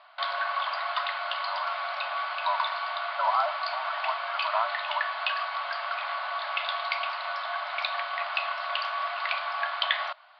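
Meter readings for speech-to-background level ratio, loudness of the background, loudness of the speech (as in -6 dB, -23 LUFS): -2.5 dB, -30.0 LUFS, -32.5 LUFS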